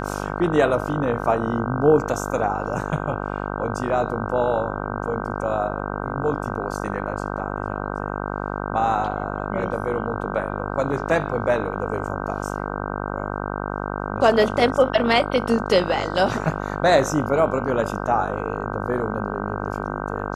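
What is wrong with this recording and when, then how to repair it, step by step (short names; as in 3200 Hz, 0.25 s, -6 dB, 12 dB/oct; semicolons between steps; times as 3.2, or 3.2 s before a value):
buzz 50 Hz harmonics 31 -28 dBFS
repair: de-hum 50 Hz, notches 31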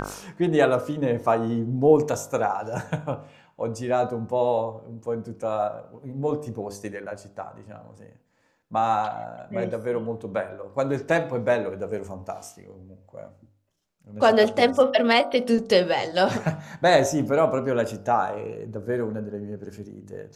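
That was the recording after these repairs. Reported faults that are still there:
none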